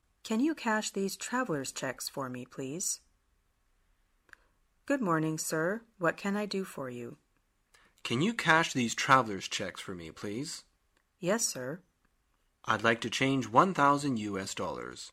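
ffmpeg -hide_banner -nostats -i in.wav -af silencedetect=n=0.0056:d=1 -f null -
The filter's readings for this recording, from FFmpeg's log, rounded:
silence_start: 2.97
silence_end: 4.33 | silence_duration: 1.36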